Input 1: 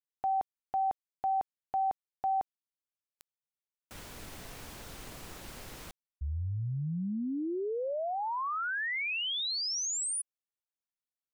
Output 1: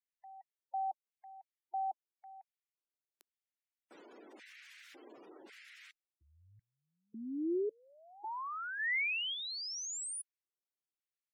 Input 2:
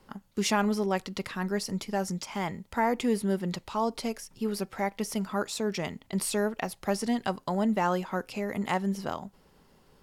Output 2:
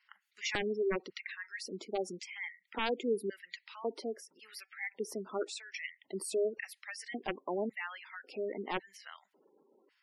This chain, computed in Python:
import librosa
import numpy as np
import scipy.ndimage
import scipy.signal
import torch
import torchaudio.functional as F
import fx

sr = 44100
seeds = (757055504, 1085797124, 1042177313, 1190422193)

y = fx.filter_lfo_highpass(x, sr, shape='square', hz=0.91, low_hz=350.0, high_hz=2000.0, q=2.8)
y = (np.mod(10.0 ** (14.0 / 20.0) * y + 1.0, 2.0) - 1.0) / 10.0 ** (14.0 / 20.0)
y = fx.spec_gate(y, sr, threshold_db=-15, keep='strong')
y = y * 10.0 ** (-8.0 / 20.0)